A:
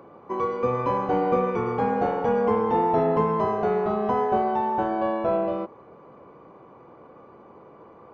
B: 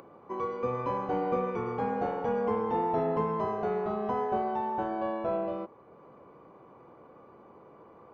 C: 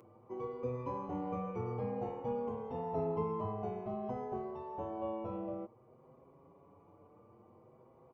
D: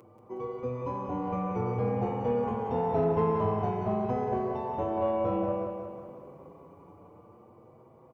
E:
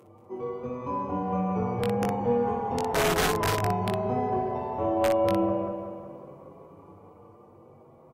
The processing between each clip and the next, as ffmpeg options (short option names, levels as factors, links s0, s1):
-af "acompressor=mode=upward:threshold=0.00891:ratio=2.5,volume=0.447"
-filter_complex "[0:a]equalizer=f=100:t=o:w=0.67:g=12,equalizer=f=1600:t=o:w=0.67:g=-11,equalizer=f=4000:t=o:w=0.67:g=-8,asplit=2[s0][s1];[s1]adelay=6.2,afreqshift=0.54[s2];[s0][s2]amix=inputs=2:normalize=1,volume=0.596"
-filter_complex "[0:a]dynaudnorm=f=390:g=9:m=2,asplit=2[s0][s1];[s1]asoftclip=type=tanh:threshold=0.0376,volume=0.668[s2];[s0][s2]amix=inputs=2:normalize=0,aecho=1:1:183|366|549|732|915|1098|1281:0.501|0.276|0.152|0.0834|0.0459|0.0252|0.0139"
-af "aeval=exprs='(mod(9.44*val(0)+1,2)-1)/9.44':c=same,aecho=1:1:21|60:0.668|0.596" -ar 48000 -c:a libvorbis -b:a 48k